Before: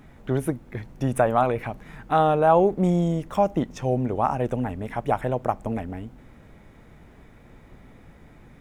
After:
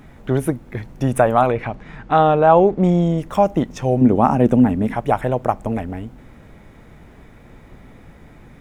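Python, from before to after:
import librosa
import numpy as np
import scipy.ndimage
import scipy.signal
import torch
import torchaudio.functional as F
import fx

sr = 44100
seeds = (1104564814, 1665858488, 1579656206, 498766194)

y = fx.lowpass(x, sr, hz=5200.0, slope=12, at=(1.51, 3.18))
y = fx.peak_eq(y, sr, hz=230.0, db=11.0, octaves=1.3, at=(4.01, 4.95))
y = y * 10.0 ** (5.5 / 20.0)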